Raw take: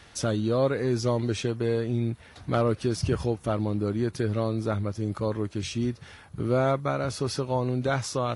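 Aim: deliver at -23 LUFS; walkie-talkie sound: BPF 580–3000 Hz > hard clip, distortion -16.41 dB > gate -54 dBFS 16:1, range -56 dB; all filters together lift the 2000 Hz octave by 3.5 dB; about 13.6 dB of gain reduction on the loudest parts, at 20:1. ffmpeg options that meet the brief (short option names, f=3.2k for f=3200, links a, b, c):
-af "equalizer=f=2k:t=o:g=6,acompressor=threshold=-32dB:ratio=20,highpass=580,lowpass=3k,asoftclip=type=hard:threshold=-34.5dB,agate=range=-56dB:threshold=-54dB:ratio=16,volume=22dB"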